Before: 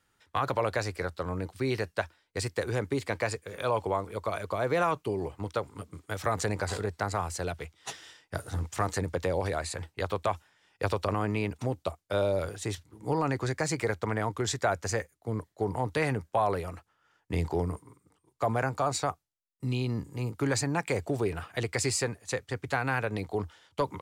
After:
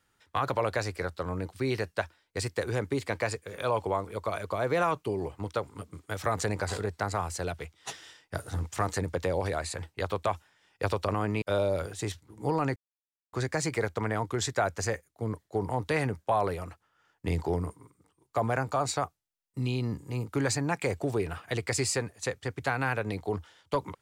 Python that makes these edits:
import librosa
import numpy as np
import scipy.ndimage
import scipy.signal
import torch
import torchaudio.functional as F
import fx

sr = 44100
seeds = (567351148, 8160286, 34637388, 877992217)

y = fx.edit(x, sr, fx.cut(start_s=11.42, length_s=0.63),
    fx.insert_silence(at_s=13.39, length_s=0.57), tone=tone)